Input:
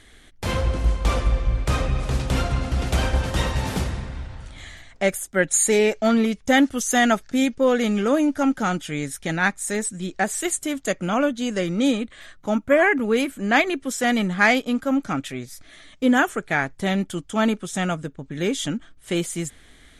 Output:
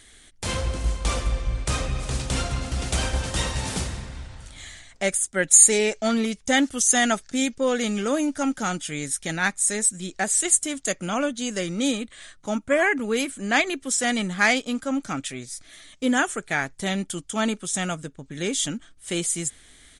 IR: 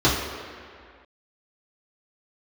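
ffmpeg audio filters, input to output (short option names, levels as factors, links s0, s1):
-af "aemphasis=mode=production:type=75kf,aresample=22050,aresample=44100,volume=0.596"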